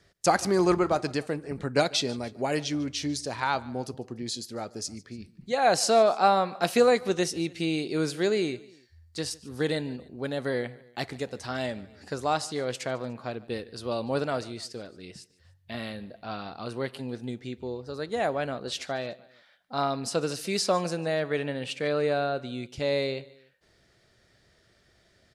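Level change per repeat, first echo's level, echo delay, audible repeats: −5.0 dB, −22.0 dB, 147 ms, 2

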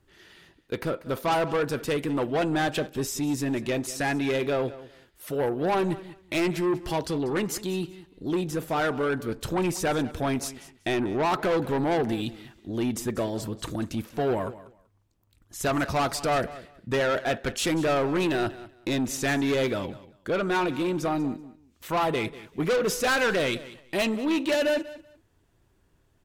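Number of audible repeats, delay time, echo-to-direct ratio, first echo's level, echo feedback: 2, 191 ms, −17.0 dB, −17.0 dB, 19%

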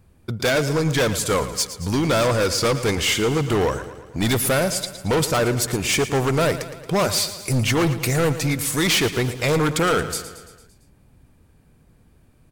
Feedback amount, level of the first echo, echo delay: 58%, −13.0 dB, 113 ms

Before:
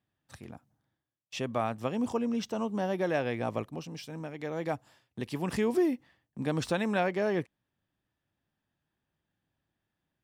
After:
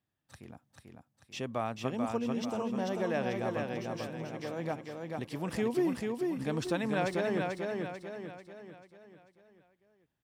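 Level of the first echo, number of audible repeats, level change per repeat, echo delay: −3.5 dB, 5, −6.5 dB, 441 ms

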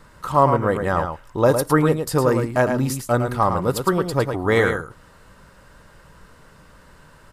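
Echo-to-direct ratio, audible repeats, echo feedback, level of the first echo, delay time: −7.0 dB, 1, repeats not evenly spaced, −7.0 dB, 109 ms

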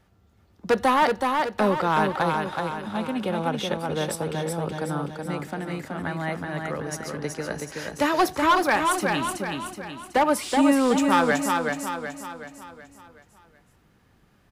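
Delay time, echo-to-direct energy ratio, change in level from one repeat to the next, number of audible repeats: 374 ms, −3.0 dB, −6.5 dB, 5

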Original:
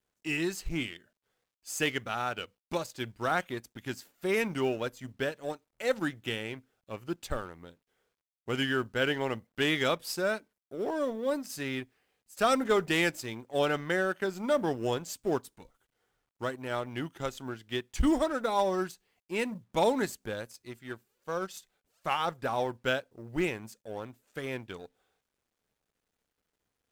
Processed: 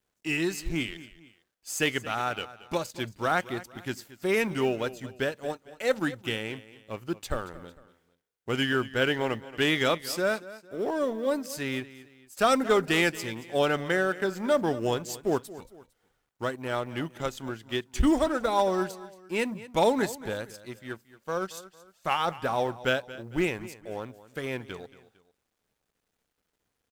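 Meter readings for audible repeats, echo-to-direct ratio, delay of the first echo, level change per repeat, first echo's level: 2, −16.5 dB, 227 ms, −8.0 dB, −17.0 dB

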